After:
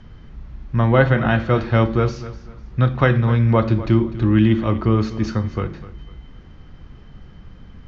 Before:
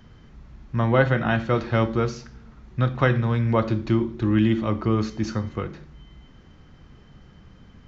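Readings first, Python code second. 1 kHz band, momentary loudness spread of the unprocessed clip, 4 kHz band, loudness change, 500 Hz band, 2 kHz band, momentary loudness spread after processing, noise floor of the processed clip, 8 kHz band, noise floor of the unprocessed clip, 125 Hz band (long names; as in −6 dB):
+3.5 dB, 11 LU, +3.0 dB, +5.0 dB, +4.0 dB, +3.5 dB, 14 LU, −42 dBFS, can't be measured, −50 dBFS, +6.0 dB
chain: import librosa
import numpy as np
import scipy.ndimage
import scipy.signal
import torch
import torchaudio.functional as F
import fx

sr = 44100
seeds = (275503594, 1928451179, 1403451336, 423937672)

p1 = scipy.signal.sosfilt(scipy.signal.butter(2, 5300.0, 'lowpass', fs=sr, output='sos'), x)
p2 = fx.low_shelf(p1, sr, hz=67.0, db=9.5)
p3 = p2 + fx.echo_feedback(p2, sr, ms=249, feedback_pct=29, wet_db=-16.0, dry=0)
y = p3 * librosa.db_to_amplitude(3.5)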